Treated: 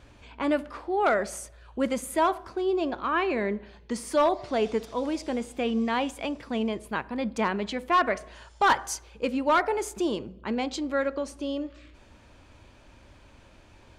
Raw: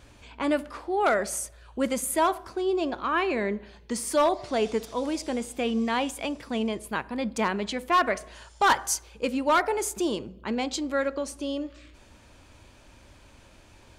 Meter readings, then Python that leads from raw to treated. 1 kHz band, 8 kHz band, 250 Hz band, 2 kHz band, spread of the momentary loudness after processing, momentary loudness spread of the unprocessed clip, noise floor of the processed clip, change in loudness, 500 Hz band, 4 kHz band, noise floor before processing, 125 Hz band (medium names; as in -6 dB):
-0.5 dB, -6.5 dB, 0.0 dB, -1.0 dB, 10 LU, 9 LU, -54 dBFS, -0.5 dB, 0.0 dB, -2.5 dB, -54 dBFS, 0.0 dB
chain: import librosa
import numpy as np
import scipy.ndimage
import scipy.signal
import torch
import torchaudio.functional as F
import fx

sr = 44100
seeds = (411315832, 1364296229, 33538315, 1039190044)

y = fx.high_shelf(x, sr, hz=6300.0, db=-11.0)